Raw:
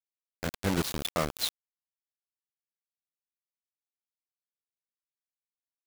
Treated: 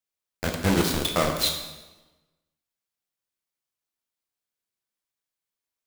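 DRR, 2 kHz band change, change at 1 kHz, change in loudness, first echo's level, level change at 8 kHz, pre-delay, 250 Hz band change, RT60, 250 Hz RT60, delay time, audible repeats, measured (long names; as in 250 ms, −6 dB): 2.0 dB, +7.0 dB, +7.0 dB, +7.0 dB, no echo audible, +7.0 dB, 5 ms, +7.5 dB, 1.1 s, 1.3 s, no echo audible, no echo audible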